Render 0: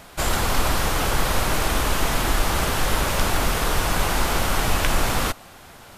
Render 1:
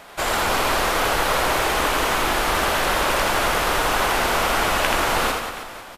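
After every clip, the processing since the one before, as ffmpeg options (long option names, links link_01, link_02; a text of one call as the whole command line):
ffmpeg -i in.wav -filter_complex "[0:a]bass=frequency=250:gain=-13,treble=frequency=4000:gain=-6,asplit=2[link_01][link_02];[link_02]aecho=0:1:80|184|319.2|495|723.4:0.631|0.398|0.251|0.158|0.1[link_03];[link_01][link_03]amix=inputs=2:normalize=0,volume=3dB" out.wav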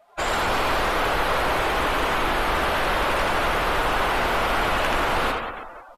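ffmpeg -i in.wav -filter_complex "[0:a]afftdn=noise_reduction=23:noise_floor=-34,adynamicequalizer=threshold=0.00501:dfrequency=6000:dqfactor=1.1:tfrequency=6000:tqfactor=1.1:attack=5:release=100:ratio=0.375:range=3:mode=cutabove:tftype=bell,acrossover=split=120[link_01][link_02];[link_02]asoftclip=type=tanh:threshold=-15dB[link_03];[link_01][link_03]amix=inputs=2:normalize=0" out.wav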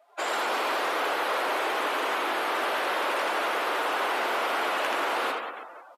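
ffmpeg -i in.wav -af "highpass=frequency=300:width=0.5412,highpass=frequency=300:width=1.3066,volume=-4.5dB" out.wav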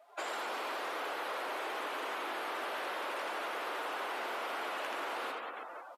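ffmpeg -i in.wav -af "acompressor=threshold=-41dB:ratio=2.5" out.wav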